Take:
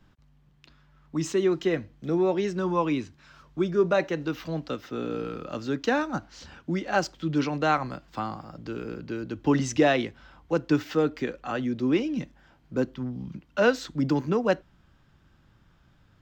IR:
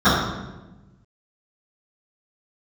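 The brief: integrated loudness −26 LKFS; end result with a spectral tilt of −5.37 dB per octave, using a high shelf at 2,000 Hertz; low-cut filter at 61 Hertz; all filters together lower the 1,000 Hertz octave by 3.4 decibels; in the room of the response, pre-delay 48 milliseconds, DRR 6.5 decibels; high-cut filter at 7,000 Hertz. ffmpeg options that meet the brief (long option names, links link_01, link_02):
-filter_complex "[0:a]highpass=61,lowpass=7000,equalizer=frequency=1000:width_type=o:gain=-4,highshelf=frequency=2000:gain=-3.5,asplit=2[link_01][link_02];[1:a]atrim=start_sample=2205,adelay=48[link_03];[link_02][link_03]afir=irnorm=-1:irlink=0,volume=-32dB[link_04];[link_01][link_04]amix=inputs=2:normalize=0,volume=1dB"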